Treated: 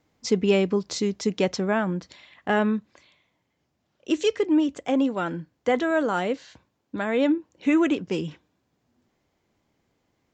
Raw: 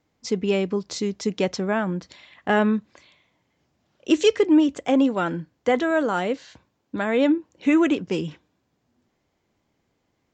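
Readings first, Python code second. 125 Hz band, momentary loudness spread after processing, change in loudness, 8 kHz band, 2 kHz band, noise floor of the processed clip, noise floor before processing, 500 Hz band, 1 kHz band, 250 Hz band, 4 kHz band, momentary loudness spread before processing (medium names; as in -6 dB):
-0.5 dB, 9 LU, -2.0 dB, no reading, -2.0 dB, -75 dBFS, -73 dBFS, -1.5 dB, -2.0 dB, -2.5 dB, -2.0 dB, 10 LU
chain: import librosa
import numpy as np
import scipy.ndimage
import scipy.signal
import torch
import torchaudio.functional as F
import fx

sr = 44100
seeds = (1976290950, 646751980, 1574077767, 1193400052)

y = fx.rider(x, sr, range_db=10, speed_s=2.0)
y = y * 10.0 ** (-2.5 / 20.0)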